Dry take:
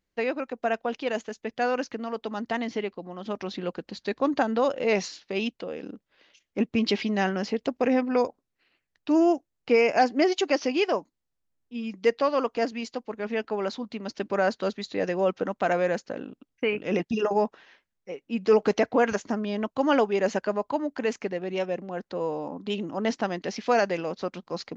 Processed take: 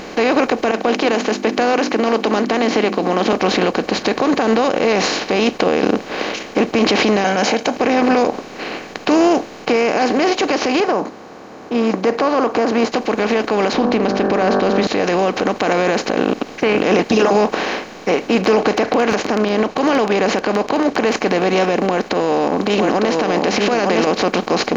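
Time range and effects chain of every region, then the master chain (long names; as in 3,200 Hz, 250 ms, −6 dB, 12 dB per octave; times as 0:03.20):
0:00.71–0:03.33: four-pole ladder high-pass 160 Hz, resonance 25% + downward compressor 2 to 1, threshold −39 dBFS + mains-hum notches 50/100/150/200/250/300/350 Hz
0:07.24–0:07.76: high-pass filter 280 Hz + parametric band 6,400 Hz +14.5 dB 0.24 octaves + comb filter 1.3 ms, depth 82%
0:10.80–0:12.92: high-pass filter 100 Hz + high shelf with overshoot 1,800 Hz −13.5 dB, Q 1.5
0:13.73–0:14.87: low-pass filter 6,000 Hz 24 dB per octave + spectral tilt −3.5 dB per octave + hum removal 48.75 Hz, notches 37
0:18.40–0:21.13: high-frequency loss of the air 70 metres + surface crackle 11 per second −31 dBFS
0:21.86–0:24.07: single-tap delay 905 ms −6.5 dB + downward compressor 10 to 1, threshold −32 dBFS
whole clip: compressor on every frequency bin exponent 0.4; brickwall limiter −14 dBFS; speech leveller within 4 dB 2 s; level +8 dB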